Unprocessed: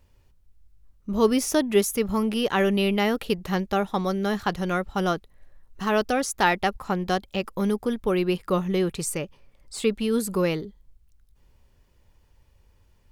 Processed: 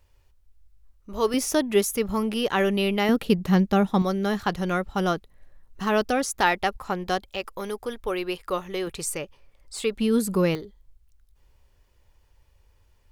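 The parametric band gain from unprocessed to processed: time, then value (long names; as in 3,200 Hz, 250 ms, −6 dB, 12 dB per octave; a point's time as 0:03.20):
parametric band 190 Hz 1.4 octaves
−12.5 dB
from 0:01.34 −2 dB
from 0:03.09 +8 dB
from 0:04.02 +0.5 dB
from 0:06.41 −5.5 dB
from 0:07.31 −14.5 dB
from 0:08.87 −8.5 dB
from 0:09.96 +3.5 dB
from 0:10.55 −8.5 dB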